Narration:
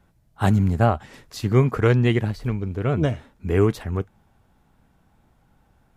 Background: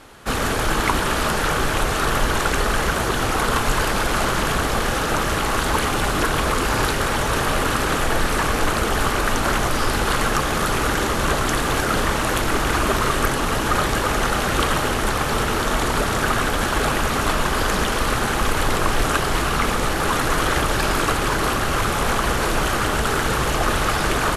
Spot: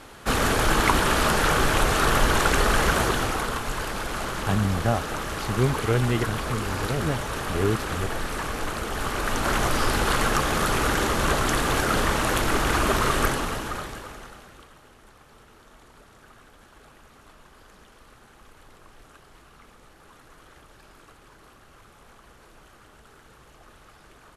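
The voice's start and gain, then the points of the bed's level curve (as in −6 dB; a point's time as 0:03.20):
4.05 s, −5.5 dB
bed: 0:03.01 −0.5 dB
0:03.59 −9.5 dB
0:08.89 −9.5 dB
0:09.64 −2.5 dB
0:13.26 −2.5 dB
0:14.71 −31.5 dB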